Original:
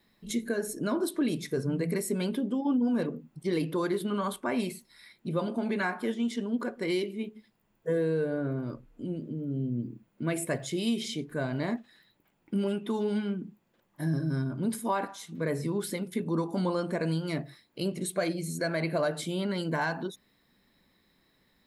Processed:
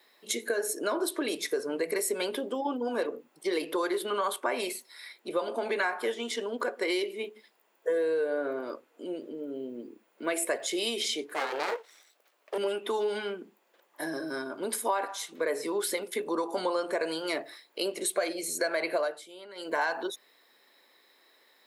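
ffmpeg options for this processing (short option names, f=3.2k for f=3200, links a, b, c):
-filter_complex "[0:a]asettb=1/sr,asplit=3[a][b][c];[a]atrim=end=11.344[d];[b]atrim=start=11.34:end=12.58,asetpts=PTS-STARTPTS,afade=t=in:d=0.004:c=qsin,afade=t=out:st=1.236:d=0.004:c=qsin,aeval=exprs='abs(val(0))':c=same[e];[c]atrim=start=12.576[f];[d][e]acrossfade=d=0.004:c1=hsin:c2=qsin[g];[g][f]acrossfade=d=0.004:c1=qsin:c2=hsin,asplit=3[h][i][j];[h]atrim=end=19.2,asetpts=PTS-STARTPTS,afade=t=out:st=18.94:d=0.26:silence=0.133352[k];[i]atrim=start=19.2:end=19.55,asetpts=PTS-STARTPTS,volume=-17.5dB[l];[j]atrim=start=19.55,asetpts=PTS-STARTPTS,afade=t=in:d=0.26:silence=0.133352[m];[k][l][m]concat=n=3:v=0:a=1,highpass=f=400:w=0.5412,highpass=f=400:w=1.3066,acompressor=threshold=-34dB:ratio=3,volume=7.5dB"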